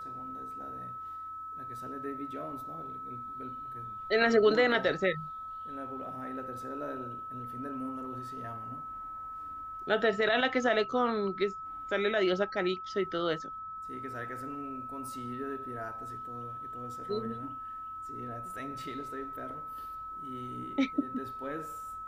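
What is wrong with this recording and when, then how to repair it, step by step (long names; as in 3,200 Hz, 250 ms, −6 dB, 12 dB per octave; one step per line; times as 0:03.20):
whistle 1,300 Hz −39 dBFS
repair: notch filter 1,300 Hz, Q 30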